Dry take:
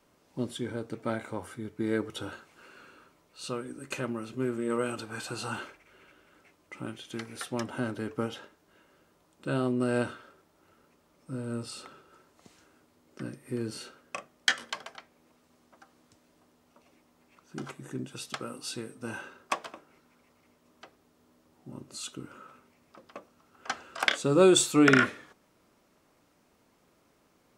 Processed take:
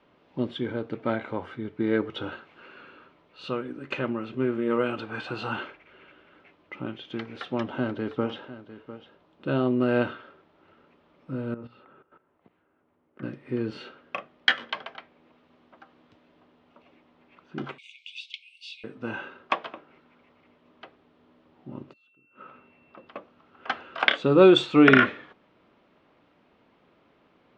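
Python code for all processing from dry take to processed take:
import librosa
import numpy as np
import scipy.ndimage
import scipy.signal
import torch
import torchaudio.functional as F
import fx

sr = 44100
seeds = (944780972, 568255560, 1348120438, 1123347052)

y = fx.chain(x, sr, fx.lowpass(hz=10000.0, slope=12),
    fx.peak_eq(hz=1900.0, db=-3.0, octaves=1.4),
    fx.echo_single(ms=701, db=-14.5), at=(6.75, 9.71))
y = fx.chain(y, sr, fx.lowpass(hz=1800.0, slope=12),
    fx.hum_notches(base_hz=60, count=10),
    fx.level_steps(step_db=15), at=(11.54, 13.23))
y = fx.chain(y, sr, fx.brickwall_highpass(low_hz=2100.0),
    fx.band_squash(depth_pct=70), at=(17.78, 18.84))
y = fx.high_shelf(y, sr, hz=5000.0, db=-11.0, at=(21.92, 23.06), fade=0.02)
y = fx.gate_flip(y, sr, shuts_db=-39.0, range_db=-30, at=(21.92, 23.06), fade=0.02)
y = fx.dmg_tone(y, sr, hz=2700.0, level_db=-68.0, at=(21.92, 23.06), fade=0.02)
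y = scipy.signal.sosfilt(scipy.signal.cheby1(3, 1.0, 3300.0, 'lowpass', fs=sr, output='sos'), y)
y = fx.low_shelf(y, sr, hz=86.0, db=-8.5)
y = y * librosa.db_to_amplitude(5.5)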